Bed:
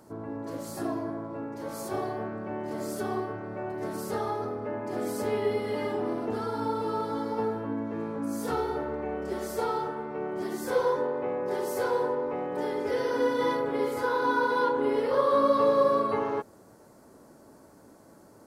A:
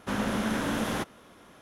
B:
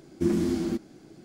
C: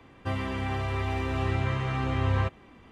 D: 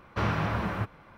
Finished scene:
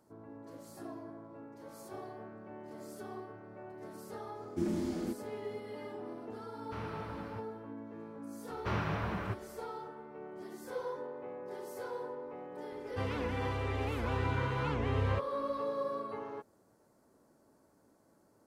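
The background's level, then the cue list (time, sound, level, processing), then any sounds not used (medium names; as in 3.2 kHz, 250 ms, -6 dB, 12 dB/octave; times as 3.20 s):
bed -13.5 dB
4.36 s: add B -9 dB
6.55 s: add D -16 dB
8.49 s: add D -6.5 dB
12.71 s: add C -6.5 dB + warped record 78 rpm, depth 250 cents
not used: A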